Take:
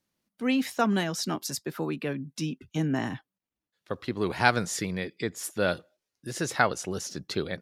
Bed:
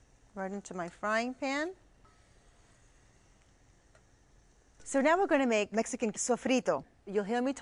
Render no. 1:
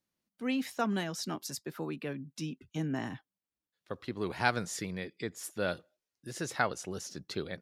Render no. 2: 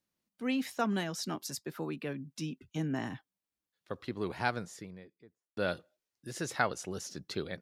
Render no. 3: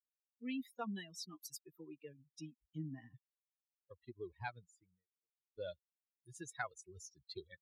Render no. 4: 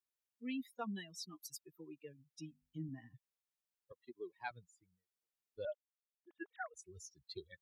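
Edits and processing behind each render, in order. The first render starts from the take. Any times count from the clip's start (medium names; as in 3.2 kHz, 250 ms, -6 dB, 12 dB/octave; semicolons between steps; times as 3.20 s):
trim -6.5 dB
3.97–5.57 s: studio fade out
expander on every frequency bin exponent 3; compression 1.5:1, threshold -52 dBFS, peak gain reduction 9 dB
2.49–2.89 s: hum notches 50/100/150/200/250 Hz; 3.92–4.51 s: high-pass 220 Hz 24 dB/octave; 5.65–6.74 s: formants replaced by sine waves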